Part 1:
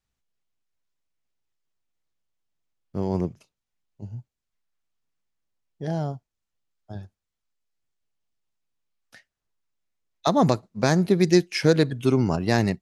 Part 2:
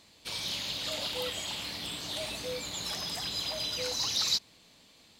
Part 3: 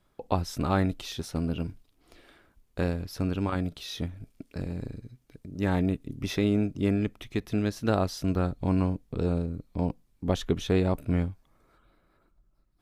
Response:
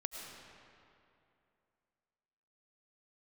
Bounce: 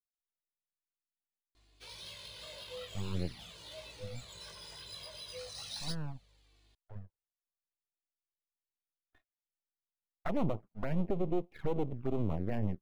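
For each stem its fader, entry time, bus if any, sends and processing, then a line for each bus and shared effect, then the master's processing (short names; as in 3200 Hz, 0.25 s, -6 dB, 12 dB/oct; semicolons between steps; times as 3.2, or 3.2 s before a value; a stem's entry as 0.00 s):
-4.0 dB, 0.00 s, bus A, no send, LPF 1400 Hz 24 dB/oct; gate with hold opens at -49 dBFS; half-wave rectifier
-6.0 dB, 1.55 s, bus A, no send, hum 50 Hz, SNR 24 dB; chorus 0.42 Hz, delay 17.5 ms, depth 2.6 ms
off
bus A: 0.0 dB, envelope flanger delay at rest 2.9 ms, full sweep at -26 dBFS; limiter -21.5 dBFS, peak gain reduction 6 dB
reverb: off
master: decimation joined by straight lines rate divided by 3×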